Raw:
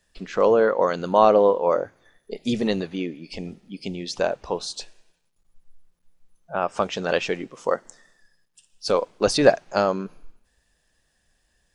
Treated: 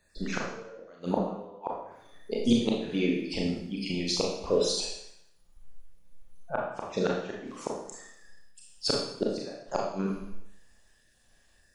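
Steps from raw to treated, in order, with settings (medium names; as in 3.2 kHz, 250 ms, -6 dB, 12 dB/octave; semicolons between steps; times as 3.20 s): random holes in the spectrogram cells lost 22%; inverted gate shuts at -14 dBFS, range -32 dB; Schroeder reverb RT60 0.72 s, combs from 27 ms, DRR -2.5 dB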